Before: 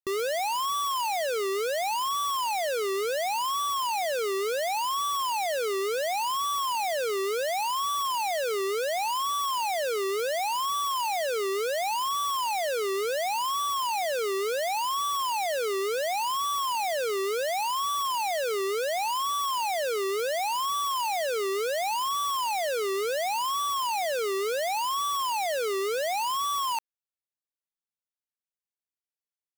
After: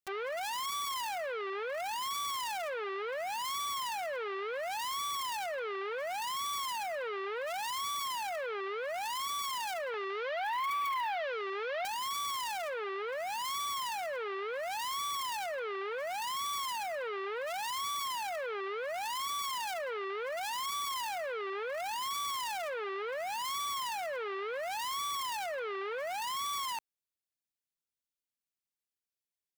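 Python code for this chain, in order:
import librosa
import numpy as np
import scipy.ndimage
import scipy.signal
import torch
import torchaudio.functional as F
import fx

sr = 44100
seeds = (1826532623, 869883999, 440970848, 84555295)

y = fx.peak_eq(x, sr, hz=fx.steps((0.0, 1000.0), (9.94, 6900.0), (11.85, 950.0)), db=-7.0, octaves=1.7)
y = fx.transformer_sat(y, sr, knee_hz=1600.0)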